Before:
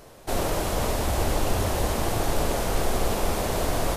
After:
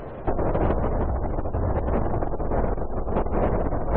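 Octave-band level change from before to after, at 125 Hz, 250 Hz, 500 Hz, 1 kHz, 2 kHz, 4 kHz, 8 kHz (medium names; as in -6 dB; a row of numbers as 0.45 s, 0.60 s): +2.5 dB, +2.5 dB, +1.0 dB, -0.5 dB, -7.0 dB, under -25 dB, under -40 dB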